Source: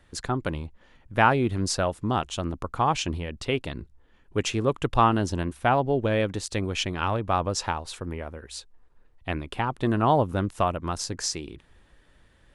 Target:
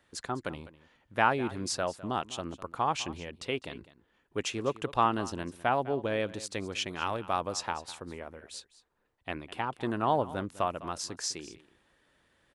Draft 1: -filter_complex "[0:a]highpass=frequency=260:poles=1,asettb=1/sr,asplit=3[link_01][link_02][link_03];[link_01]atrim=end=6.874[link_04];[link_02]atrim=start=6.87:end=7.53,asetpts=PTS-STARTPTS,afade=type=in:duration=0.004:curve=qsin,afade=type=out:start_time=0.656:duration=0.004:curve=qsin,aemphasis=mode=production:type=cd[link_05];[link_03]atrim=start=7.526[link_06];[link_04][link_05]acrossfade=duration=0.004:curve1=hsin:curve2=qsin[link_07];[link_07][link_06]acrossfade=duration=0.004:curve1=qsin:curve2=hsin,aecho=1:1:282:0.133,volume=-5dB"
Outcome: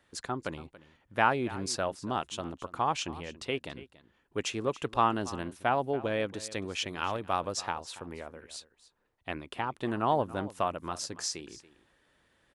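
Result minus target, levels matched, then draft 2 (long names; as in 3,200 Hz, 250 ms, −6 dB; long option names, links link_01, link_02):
echo 78 ms late
-filter_complex "[0:a]highpass=frequency=260:poles=1,asettb=1/sr,asplit=3[link_01][link_02][link_03];[link_01]atrim=end=6.874[link_04];[link_02]atrim=start=6.87:end=7.53,asetpts=PTS-STARTPTS,afade=type=in:duration=0.004:curve=qsin,afade=type=out:start_time=0.656:duration=0.004:curve=qsin,aemphasis=mode=production:type=cd[link_05];[link_03]atrim=start=7.526[link_06];[link_04][link_05]acrossfade=duration=0.004:curve1=hsin:curve2=qsin[link_07];[link_07][link_06]acrossfade=duration=0.004:curve1=qsin:curve2=hsin,aecho=1:1:204:0.133,volume=-5dB"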